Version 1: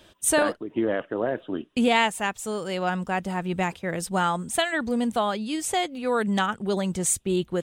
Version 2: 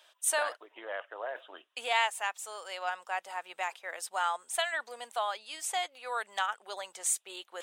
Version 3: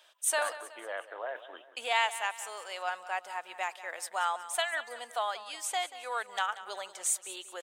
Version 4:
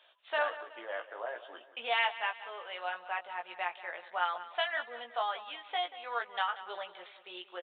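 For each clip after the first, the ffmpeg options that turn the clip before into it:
ffmpeg -i in.wav -af "highpass=frequency=670:width=0.5412,highpass=frequency=670:width=1.3066,areverse,acompressor=mode=upward:threshold=-35dB:ratio=2.5,areverse,volume=-5.5dB" out.wav
ffmpeg -i in.wav -af "aecho=1:1:185|370|555|740:0.178|0.0818|0.0376|0.0173" out.wav
ffmpeg -i in.wav -filter_complex "[0:a]asplit=2[link_01][link_02];[link_02]adelay=17,volume=-4.5dB[link_03];[link_01][link_03]amix=inputs=2:normalize=0,aresample=8000,aresample=44100,volume=-2dB" out.wav

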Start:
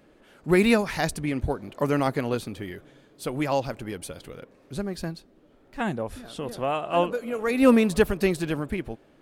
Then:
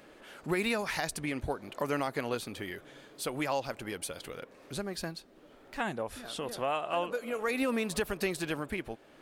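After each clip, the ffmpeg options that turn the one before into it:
ffmpeg -i in.wav -af "lowshelf=frequency=380:gain=-11,alimiter=limit=-17.5dB:level=0:latency=1:release=111,acompressor=threshold=-52dB:ratio=1.5,volume=7dB" out.wav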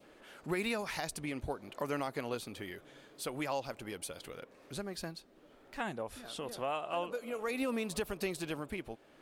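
ffmpeg -i in.wav -af "adynamicequalizer=threshold=0.00251:dfrequency=1700:dqfactor=2.5:tfrequency=1700:tqfactor=2.5:attack=5:release=100:ratio=0.375:range=2.5:mode=cutabove:tftype=bell,volume=-4dB" out.wav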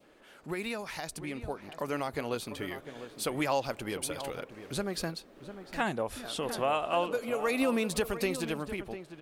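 ffmpeg -i in.wav -filter_complex "[0:a]dynaudnorm=framelen=910:gausssize=5:maxgain=8.5dB,asplit=2[link_01][link_02];[link_02]adelay=699.7,volume=-11dB,highshelf=frequency=4000:gain=-15.7[link_03];[link_01][link_03]amix=inputs=2:normalize=0,volume=-1.5dB" out.wav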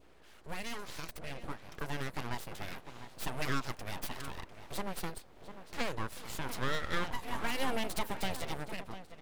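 ffmpeg -i in.wav -af "aeval=exprs='val(0)+0.00126*(sin(2*PI*60*n/s)+sin(2*PI*2*60*n/s)/2+sin(2*PI*3*60*n/s)/3+sin(2*PI*4*60*n/s)/4+sin(2*PI*5*60*n/s)/5)':channel_layout=same,aeval=exprs='abs(val(0))':channel_layout=same,volume=-2dB" out.wav

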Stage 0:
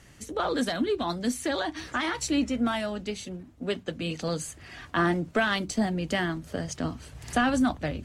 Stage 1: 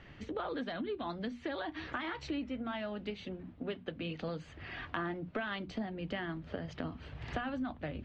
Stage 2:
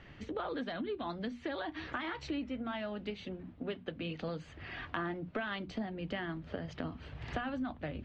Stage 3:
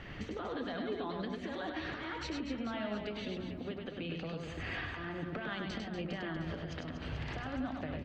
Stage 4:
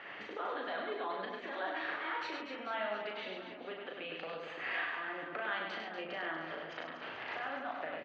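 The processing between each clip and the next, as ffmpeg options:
ffmpeg -i in.wav -af "lowpass=frequency=3500:width=0.5412,lowpass=frequency=3500:width=1.3066,acompressor=threshold=-38dB:ratio=4,bandreject=frequency=60:width_type=h:width=6,bandreject=frequency=120:width_type=h:width=6,bandreject=frequency=180:width_type=h:width=6,bandreject=frequency=240:width_type=h:width=6,volume=1dB" out.wav
ffmpeg -i in.wav -af anull out.wav
ffmpeg -i in.wav -filter_complex "[0:a]acompressor=threshold=-42dB:ratio=6,alimiter=level_in=13.5dB:limit=-24dB:level=0:latency=1:release=272,volume=-13.5dB,asplit=2[link_01][link_02];[link_02]aecho=0:1:100|240|436|710.4|1095:0.631|0.398|0.251|0.158|0.1[link_03];[link_01][link_03]amix=inputs=2:normalize=0,volume=7dB" out.wav
ffmpeg -i in.wav -filter_complex "[0:a]highpass=640,lowpass=2600,asplit=2[link_01][link_02];[link_02]adelay=37,volume=-4dB[link_03];[link_01][link_03]amix=inputs=2:normalize=0,volume=4dB" out.wav

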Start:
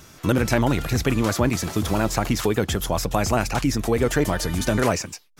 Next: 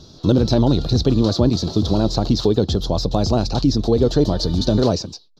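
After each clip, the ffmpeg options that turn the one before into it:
ffmpeg -i in.wav -af "firequalizer=gain_entry='entry(400,0);entry(2100,-26);entry(4000,7);entry(8600,-27)':delay=0.05:min_phase=1,volume=5.5dB" out.wav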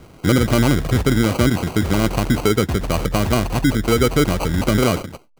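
ffmpeg -i in.wav -af "acrusher=samples=25:mix=1:aa=0.000001" out.wav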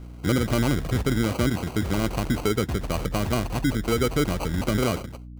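ffmpeg -i in.wav -af "aeval=exprs='val(0)+0.0251*(sin(2*PI*60*n/s)+sin(2*PI*2*60*n/s)/2+sin(2*PI*3*60*n/s)/3+sin(2*PI*4*60*n/s)/4+sin(2*PI*5*60*n/s)/5)':channel_layout=same,volume=-7dB" out.wav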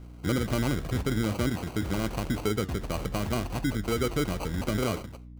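ffmpeg -i in.wav -af "flanger=delay=9.3:depth=6.7:regen=86:speed=0.81:shape=sinusoidal" out.wav

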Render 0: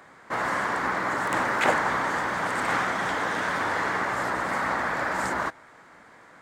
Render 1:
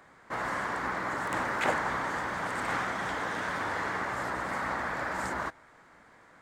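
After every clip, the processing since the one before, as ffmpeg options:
ffmpeg -i in.wav -af "lowshelf=frequency=67:gain=11.5,volume=-6dB" out.wav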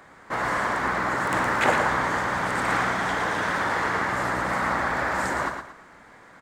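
ffmpeg -i in.wav -af "aecho=1:1:114|228|342|456:0.473|0.147|0.0455|0.0141,volume=6.5dB" out.wav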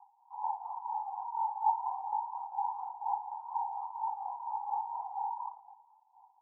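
ffmpeg -i in.wav -af "aphaser=in_gain=1:out_gain=1:delay=3.7:decay=0.52:speed=0.32:type=triangular,tremolo=f=4.2:d=0.56,asuperpass=centerf=860:order=8:qfactor=4.3,volume=-2dB" out.wav

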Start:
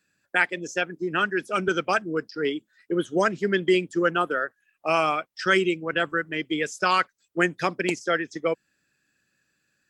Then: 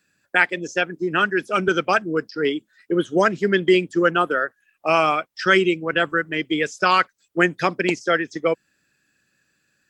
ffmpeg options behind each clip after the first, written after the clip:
ffmpeg -i in.wav -filter_complex "[0:a]acrossover=split=6600[link_01][link_02];[link_02]acompressor=threshold=-56dB:ratio=4:attack=1:release=60[link_03];[link_01][link_03]amix=inputs=2:normalize=0,volume=4.5dB" out.wav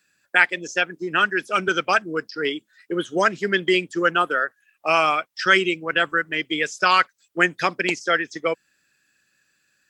ffmpeg -i in.wav -af "tiltshelf=frequency=710:gain=-4.5,volume=-2dB" out.wav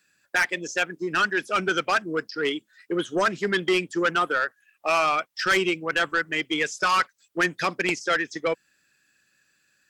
ffmpeg -i in.wav -af "asoftclip=type=tanh:threshold=-15.5dB" out.wav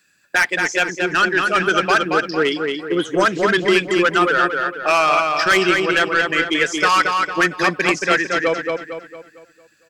ffmpeg -i in.wav -filter_complex "[0:a]asplit=2[link_01][link_02];[link_02]adelay=227,lowpass=frequency=4700:poles=1,volume=-3.5dB,asplit=2[link_03][link_04];[link_04]adelay=227,lowpass=frequency=4700:poles=1,volume=0.44,asplit=2[link_05][link_06];[link_06]adelay=227,lowpass=frequency=4700:poles=1,volume=0.44,asplit=2[link_07][link_08];[link_08]adelay=227,lowpass=frequency=4700:poles=1,volume=0.44,asplit=2[link_09][link_10];[link_10]adelay=227,lowpass=frequency=4700:poles=1,volume=0.44,asplit=2[link_11][link_12];[link_12]adelay=227,lowpass=frequency=4700:poles=1,volume=0.44[link_13];[link_01][link_03][link_05][link_07][link_09][link_11][link_13]amix=inputs=7:normalize=0,volume=6dB" out.wav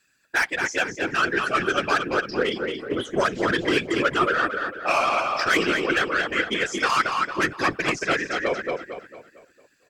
ffmpeg -i in.wav -af "afftfilt=real='hypot(re,im)*cos(2*PI*random(0))':imag='hypot(re,im)*sin(2*PI*random(1))':win_size=512:overlap=0.75" out.wav

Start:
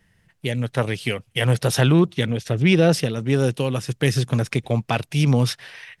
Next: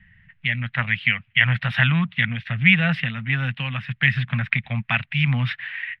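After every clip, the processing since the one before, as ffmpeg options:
ffmpeg -i in.wav -filter_complex "[0:a]highshelf=frequency=4800:width_type=q:width=1.5:gain=-9,acrossover=split=180|1200[link_01][link_02][link_03];[link_01]acompressor=mode=upward:threshold=-43dB:ratio=2.5[link_04];[link_04][link_02][link_03]amix=inputs=3:normalize=0,firequalizer=gain_entry='entry(220,0);entry(350,-30);entry(670,-7);entry(1900,14);entry(4500,-11);entry(6500,-22)':delay=0.05:min_phase=1,volume=-2.5dB" out.wav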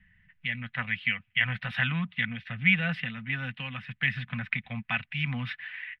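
ffmpeg -i in.wav -af "aecho=1:1:4:0.39,volume=-8.5dB" out.wav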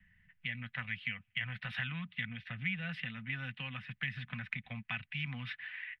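ffmpeg -i in.wav -filter_complex "[0:a]acrossover=split=170|1500|4200[link_01][link_02][link_03][link_04];[link_01]acompressor=threshold=-39dB:ratio=4[link_05];[link_02]acompressor=threshold=-43dB:ratio=4[link_06];[link_03]acompressor=threshold=-33dB:ratio=4[link_07];[link_04]acompressor=threshold=-49dB:ratio=4[link_08];[link_05][link_06][link_07][link_08]amix=inputs=4:normalize=0,volume=-4.5dB" out.wav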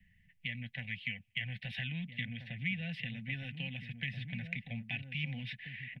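ffmpeg -i in.wav -filter_complex "[0:a]asuperstop=centerf=1200:order=4:qfactor=0.89,asplit=2[link_01][link_02];[link_02]adelay=1633,volume=-7dB,highshelf=frequency=4000:gain=-36.7[link_03];[link_01][link_03]amix=inputs=2:normalize=0,volume=1.5dB" out.wav

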